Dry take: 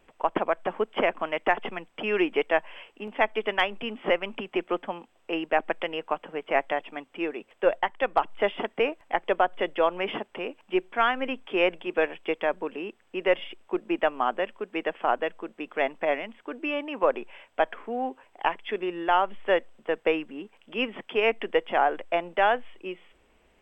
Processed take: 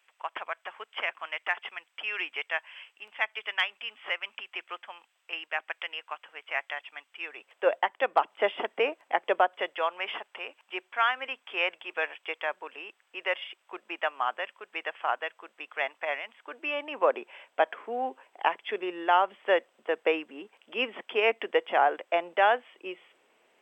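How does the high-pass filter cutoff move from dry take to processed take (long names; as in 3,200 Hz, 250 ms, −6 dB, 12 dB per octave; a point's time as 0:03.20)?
0:07.22 1,500 Hz
0:07.73 410 Hz
0:09.40 410 Hz
0:09.85 940 Hz
0:16.23 940 Hz
0:17.11 390 Hz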